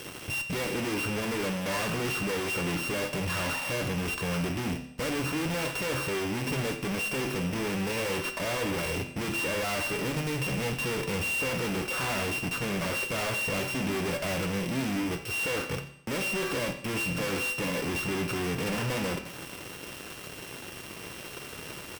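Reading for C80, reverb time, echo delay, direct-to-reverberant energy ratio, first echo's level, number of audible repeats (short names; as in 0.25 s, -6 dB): 12.5 dB, 0.75 s, 87 ms, 6.0 dB, -17.0 dB, 1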